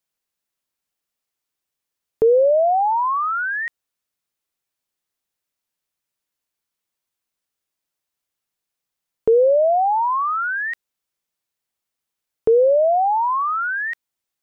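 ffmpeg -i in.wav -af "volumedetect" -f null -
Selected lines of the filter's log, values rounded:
mean_volume: -22.5 dB
max_volume: -9.5 dB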